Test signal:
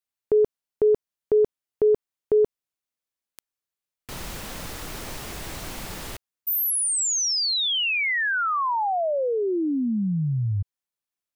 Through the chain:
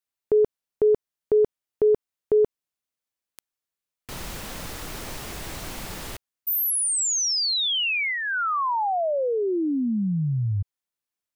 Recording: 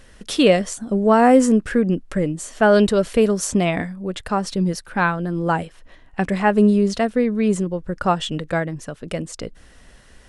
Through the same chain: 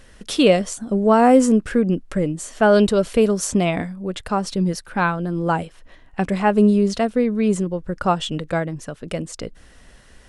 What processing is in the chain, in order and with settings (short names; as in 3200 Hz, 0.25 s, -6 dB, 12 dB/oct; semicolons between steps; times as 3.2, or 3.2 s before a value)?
dynamic EQ 1800 Hz, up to -5 dB, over -43 dBFS, Q 4.3